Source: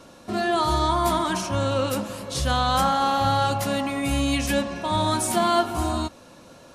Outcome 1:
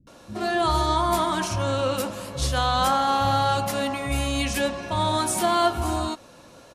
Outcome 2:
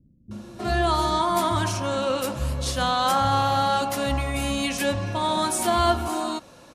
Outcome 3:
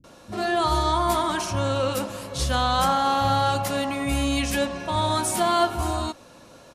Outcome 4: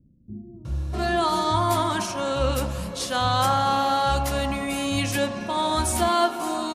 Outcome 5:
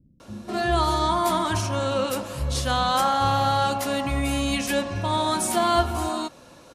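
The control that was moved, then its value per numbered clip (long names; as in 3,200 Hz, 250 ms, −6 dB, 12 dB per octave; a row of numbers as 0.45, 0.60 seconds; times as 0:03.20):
multiband delay without the direct sound, delay time: 70, 310, 40, 650, 200 milliseconds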